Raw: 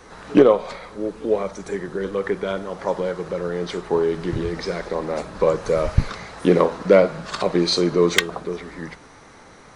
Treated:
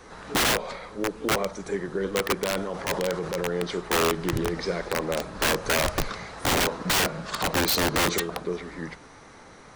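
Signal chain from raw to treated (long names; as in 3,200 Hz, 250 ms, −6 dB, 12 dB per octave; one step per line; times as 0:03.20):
wrap-around overflow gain 15 dB
0:02.51–0:03.43: transient designer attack −4 dB, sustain +5 dB
level −2 dB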